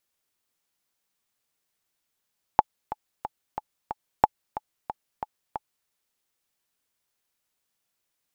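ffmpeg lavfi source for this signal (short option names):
-f lavfi -i "aevalsrc='pow(10,(-2-15*gte(mod(t,5*60/182),60/182))/20)*sin(2*PI*855*mod(t,60/182))*exp(-6.91*mod(t,60/182)/0.03)':d=3.29:s=44100"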